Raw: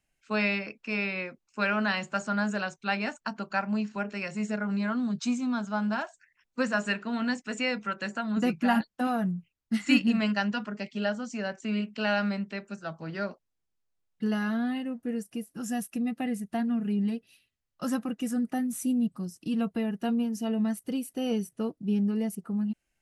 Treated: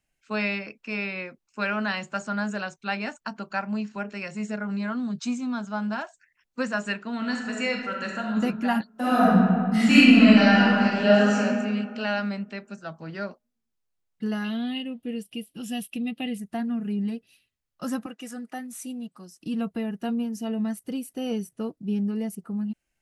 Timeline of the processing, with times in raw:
7.17–8.39 s: reverb throw, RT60 1.1 s, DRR 0.5 dB
8.92–11.38 s: reverb throw, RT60 2 s, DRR -11 dB
14.44–16.38 s: FFT filter 470 Hz 0 dB, 1.6 kHz -7 dB, 3.1 kHz +14 dB, 6.4 kHz -6 dB, 9.6 kHz 0 dB
18.06–19.40 s: frequency weighting A

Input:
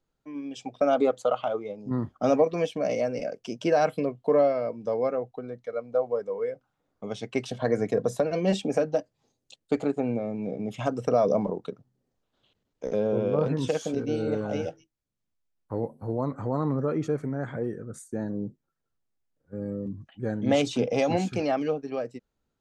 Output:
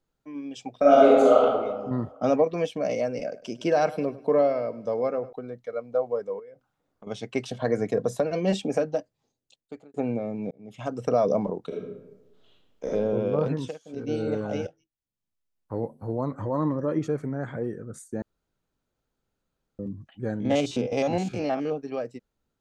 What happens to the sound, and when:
0.77–1.39 s: reverb throw, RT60 1.5 s, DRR -6.5 dB
2.12–2.65 s: treble shelf 7.2 kHz -8.5 dB
3.23–5.33 s: feedback delay 101 ms, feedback 43%, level -17.5 dB
6.39–7.07 s: compression 8:1, threshold -43 dBFS
8.76–9.94 s: fade out
10.51–11.09 s: fade in
11.67–12.87 s: reverb throw, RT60 1 s, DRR -4.5 dB
13.52–14.12 s: dip -22.5 dB, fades 0.27 s
14.67–15.79 s: fade in, from -15 dB
16.39–16.99 s: rippled EQ curve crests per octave 1.2, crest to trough 9 dB
18.22–19.79 s: room tone
20.40–21.72 s: spectrogram pixelated in time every 50 ms

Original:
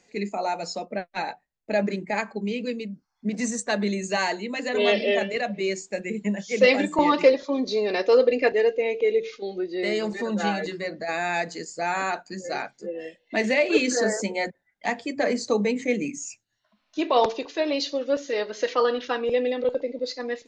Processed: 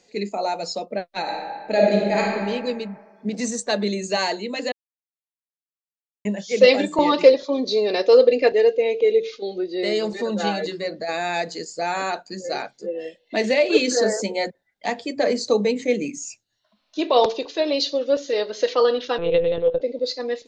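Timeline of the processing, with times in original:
1.21–2.23 s: reverb throw, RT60 1.8 s, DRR -2.5 dB
4.72–6.25 s: mute
19.18–19.81 s: monotone LPC vocoder at 8 kHz 170 Hz
whole clip: ten-band graphic EQ 500 Hz +5 dB, 2 kHz -3 dB, 4 kHz +7 dB

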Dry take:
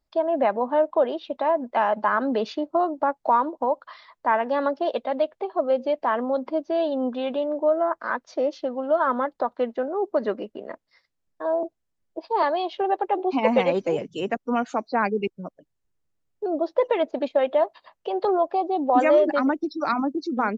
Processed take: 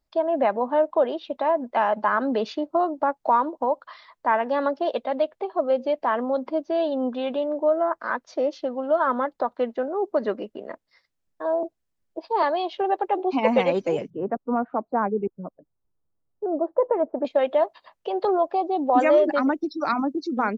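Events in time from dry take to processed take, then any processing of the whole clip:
14.10–17.25 s: low-pass 1.3 kHz 24 dB/octave

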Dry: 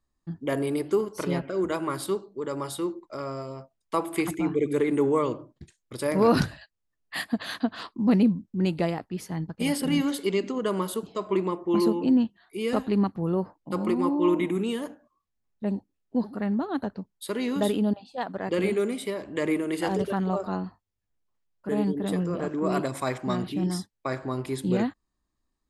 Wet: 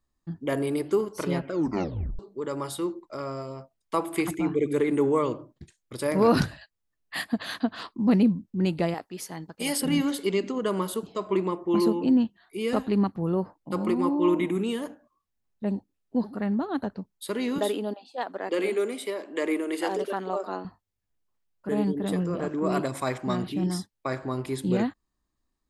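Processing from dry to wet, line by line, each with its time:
1.52 s: tape stop 0.67 s
8.94–9.83 s: tone controls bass -12 dB, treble +6 dB
17.58–20.65 s: high-pass 280 Hz 24 dB/octave

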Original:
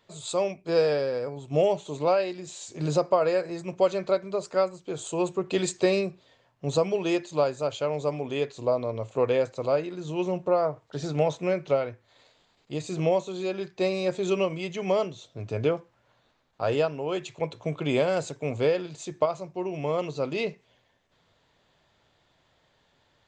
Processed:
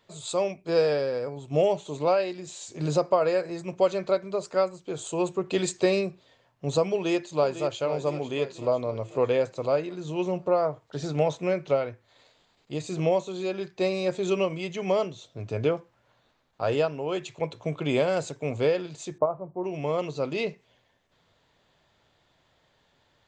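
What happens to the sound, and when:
6.91–7.78 s: echo throw 500 ms, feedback 55%, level -11.5 dB
19.18–19.64 s: low-pass 1.2 kHz 24 dB/octave

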